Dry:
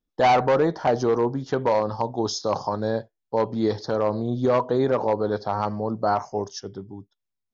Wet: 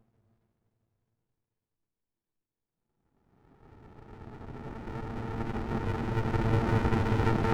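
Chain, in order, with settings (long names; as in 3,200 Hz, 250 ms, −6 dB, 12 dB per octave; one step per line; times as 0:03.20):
extreme stretch with random phases 39×, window 0.25 s, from 0:03.14
windowed peak hold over 65 samples
level +5 dB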